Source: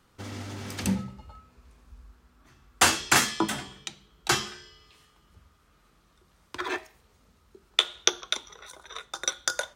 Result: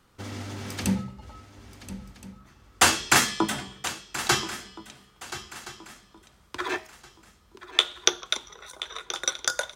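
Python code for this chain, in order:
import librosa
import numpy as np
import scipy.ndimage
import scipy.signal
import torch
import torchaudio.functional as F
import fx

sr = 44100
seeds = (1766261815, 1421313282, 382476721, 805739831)

y = fx.echo_swing(x, sr, ms=1371, ratio=3, feedback_pct=31, wet_db=-14.0)
y = y * librosa.db_to_amplitude(1.5)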